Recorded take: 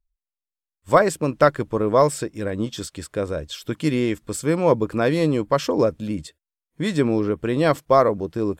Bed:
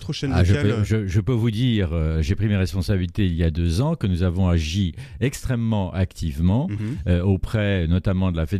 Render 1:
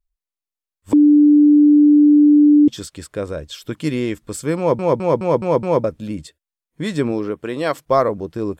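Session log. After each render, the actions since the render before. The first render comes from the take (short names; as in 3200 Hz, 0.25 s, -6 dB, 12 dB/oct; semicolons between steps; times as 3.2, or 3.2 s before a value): 0.93–2.68 bleep 295 Hz -7 dBFS; 4.58 stutter in place 0.21 s, 6 plays; 7.11–7.78 HPF 150 Hz -> 510 Hz 6 dB/oct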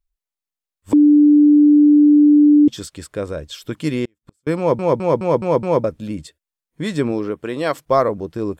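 4.05–4.47 flipped gate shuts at -26 dBFS, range -40 dB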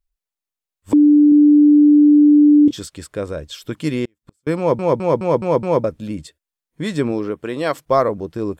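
1.29–2.79 doubler 28 ms -9 dB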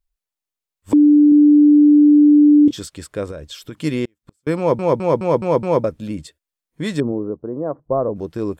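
3.31–3.82 compressor 3:1, threshold -29 dBFS; 7–8.16 Gaussian blur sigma 10 samples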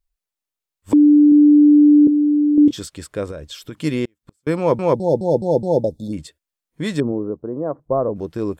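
2.07–2.58 rippled Chebyshev high-pass 260 Hz, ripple 6 dB; 4.94–6.13 brick-wall FIR band-stop 900–3400 Hz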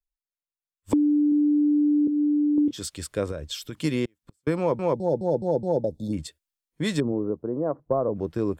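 compressor 6:1, threshold -20 dBFS, peak gain reduction 10.5 dB; three-band expander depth 40%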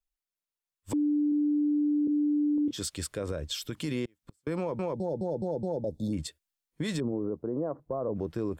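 limiter -23 dBFS, peak gain reduction 11.5 dB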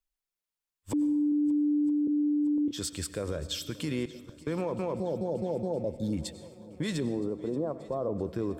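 swung echo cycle 0.968 s, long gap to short 1.5:1, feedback 54%, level -20.5 dB; plate-style reverb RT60 0.95 s, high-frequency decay 0.8×, pre-delay 80 ms, DRR 14 dB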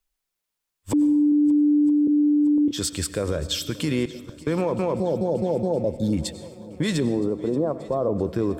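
gain +8 dB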